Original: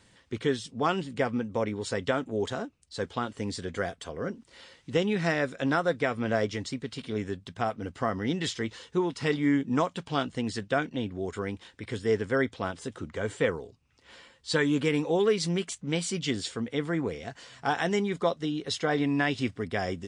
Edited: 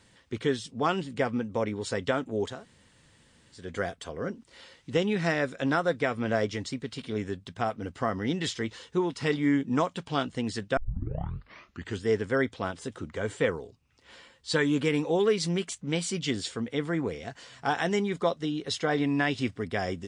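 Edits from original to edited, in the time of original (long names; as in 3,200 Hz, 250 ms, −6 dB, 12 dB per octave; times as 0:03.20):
0:02.54–0:03.63: fill with room tone, crossfade 0.24 s
0:10.77: tape start 1.27 s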